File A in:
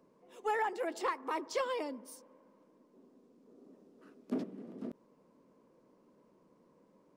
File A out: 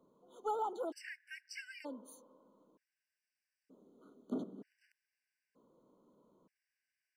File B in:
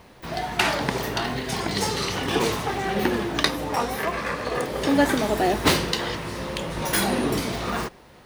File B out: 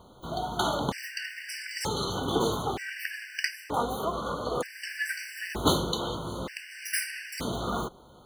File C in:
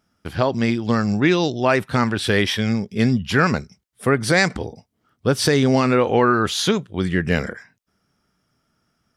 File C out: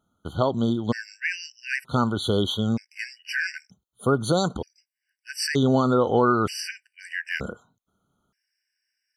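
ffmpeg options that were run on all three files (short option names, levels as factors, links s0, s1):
-af "afftfilt=real='re*gt(sin(2*PI*0.54*pts/sr)*(1-2*mod(floor(b*sr/1024/1500),2)),0)':imag='im*gt(sin(2*PI*0.54*pts/sr)*(1-2*mod(floor(b*sr/1024/1500),2)),0)':win_size=1024:overlap=0.75,volume=0.708"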